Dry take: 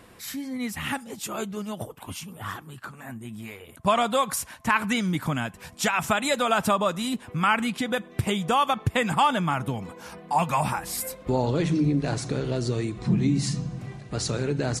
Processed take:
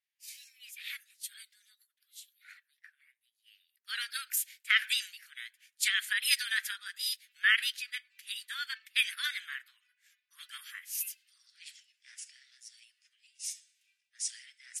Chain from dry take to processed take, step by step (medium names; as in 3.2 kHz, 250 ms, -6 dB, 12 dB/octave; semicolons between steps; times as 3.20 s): formant shift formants +4 st; steep high-pass 1.7 kHz 48 dB/octave; three bands expanded up and down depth 100%; trim -6.5 dB